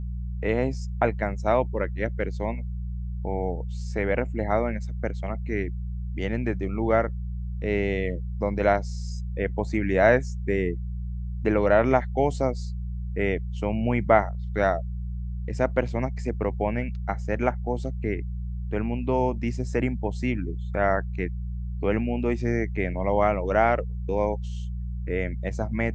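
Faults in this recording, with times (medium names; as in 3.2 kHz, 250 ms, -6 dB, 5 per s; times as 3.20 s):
hum 60 Hz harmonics 3 -31 dBFS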